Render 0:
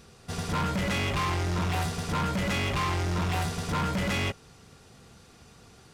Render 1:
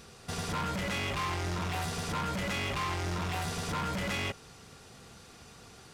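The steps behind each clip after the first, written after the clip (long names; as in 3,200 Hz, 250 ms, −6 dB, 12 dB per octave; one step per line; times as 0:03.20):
low-shelf EQ 380 Hz −4.5 dB
brickwall limiter −30.5 dBFS, peak gain reduction 7.5 dB
level +3 dB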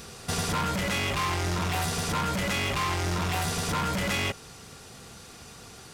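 high-shelf EQ 6,900 Hz +6 dB
in parallel at −2 dB: speech leveller 0.5 s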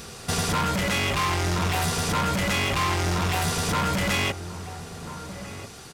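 slap from a distant wall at 230 metres, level −11 dB
level +3.5 dB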